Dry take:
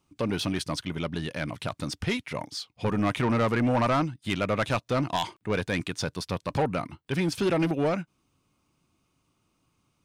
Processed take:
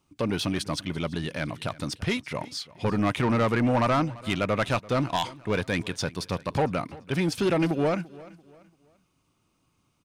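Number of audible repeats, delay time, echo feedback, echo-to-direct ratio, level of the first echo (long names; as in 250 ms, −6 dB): 2, 340 ms, 35%, −20.0 dB, −20.5 dB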